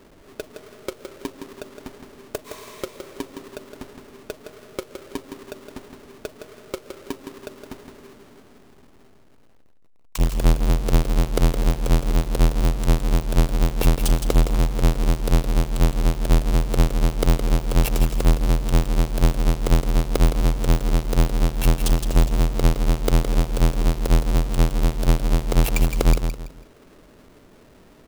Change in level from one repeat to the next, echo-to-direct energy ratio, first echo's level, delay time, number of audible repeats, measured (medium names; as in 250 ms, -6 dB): -10.5 dB, -7.5 dB, -8.0 dB, 165 ms, 3